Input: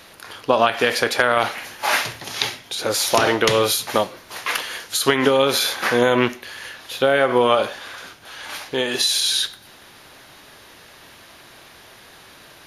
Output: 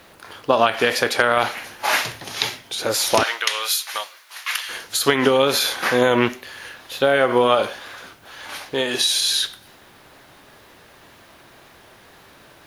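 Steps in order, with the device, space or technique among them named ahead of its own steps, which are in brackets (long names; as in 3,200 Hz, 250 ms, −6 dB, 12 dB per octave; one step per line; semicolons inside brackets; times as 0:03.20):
plain cassette with noise reduction switched in (one half of a high-frequency compander decoder only; tape wow and flutter; white noise bed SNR 39 dB)
0:03.23–0:04.69: high-pass filter 1,400 Hz 12 dB per octave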